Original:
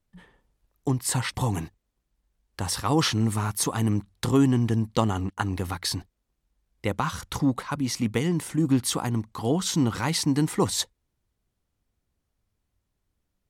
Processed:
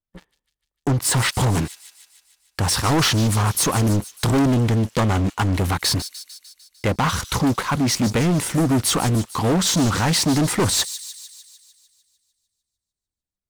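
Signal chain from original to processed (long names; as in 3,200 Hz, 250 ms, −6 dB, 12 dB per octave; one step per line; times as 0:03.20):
leveller curve on the samples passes 5
delay with a high-pass on its return 150 ms, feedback 61%, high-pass 3,800 Hz, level −10.5 dB
highs frequency-modulated by the lows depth 0.26 ms
level −6 dB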